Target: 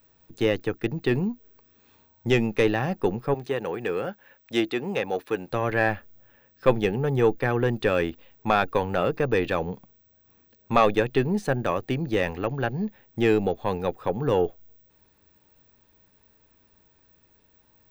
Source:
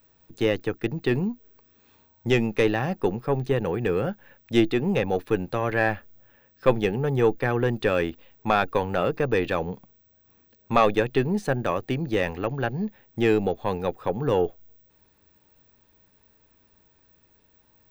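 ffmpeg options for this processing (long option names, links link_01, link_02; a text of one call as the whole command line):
ffmpeg -i in.wav -filter_complex "[0:a]asettb=1/sr,asplit=3[link_01][link_02][link_03];[link_01]atrim=end=3.344[link_04];[link_02]atrim=start=3.34:end=5.51,asetpts=PTS-STARTPTS,afade=type=in:duration=0.004:curve=qsin,afade=type=out:start_time=2.166:duration=0.004:curve=qsin,highpass=frequency=440:poles=1[link_05];[link_03]atrim=start=5.506[link_06];[link_04][link_05]acrossfade=duration=0.004:curve1=hsin:curve2=qsin[link_07];[link_07][link_06]acrossfade=duration=0.004:curve1=qsin:curve2=hsin" out.wav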